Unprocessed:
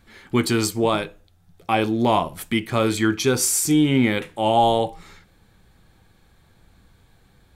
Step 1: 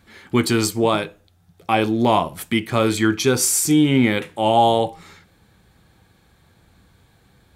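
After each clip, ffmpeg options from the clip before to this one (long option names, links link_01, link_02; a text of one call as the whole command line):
ffmpeg -i in.wav -af "highpass=56,volume=2dB" out.wav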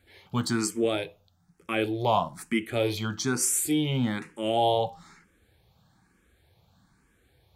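ffmpeg -i in.wav -filter_complex "[0:a]asplit=2[link_01][link_02];[link_02]afreqshift=1.1[link_03];[link_01][link_03]amix=inputs=2:normalize=1,volume=-5.5dB" out.wav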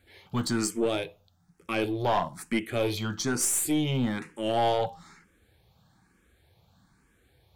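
ffmpeg -i in.wav -af "aeval=exprs='(tanh(7.94*val(0)+0.3)-tanh(0.3))/7.94':channel_layout=same,volume=1dB" out.wav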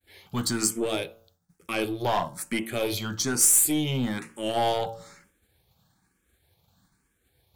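ffmpeg -i in.wav -af "bandreject=frequency=113:width_type=h:width=4,bandreject=frequency=226:width_type=h:width=4,bandreject=frequency=339:width_type=h:width=4,bandreject=frequency=452:width_type=h:width=4,bandreject=frequency=565:width_type=h:width=4,bandreject=frequency=678:width_type=h:width=4,bandreject=frequency=791:width_type=h:width=4,bandreject=frequency=904:width_type=h:width=4,bandreject=frequency=1017:width_type=h:width=4,bandreject=frequency=1130:width_type=h:width=4,bandreject=frequency=1243:width_type=h:width=4,bandreject=frequency=1356:width_type=h:width=4,bandreject=frequency=1469:width_type=h:width=4,bandreject=frequency=1582:width_type=h:width=4,agate=range=-33dB:threshold=-58dB:ratio=3:detection=peak,crystalizer=i=1.5:c=0" out.wav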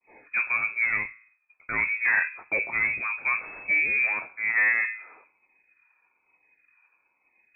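ffmpeg -i in.wav -af "lowpass=frequency=2200:width_type=q:width=0.5098,lowpass=frequency=2200:width_type=q:width=0.6013,lowpass=frequency=2200:width_type=q:width=0.9,lowpass=frequency=2200:width_type=q:width=2.563,afreqshift=-2600,volume=2.5dB" -ar 48000 -c:a libvorbis -b:a 192k out.ogg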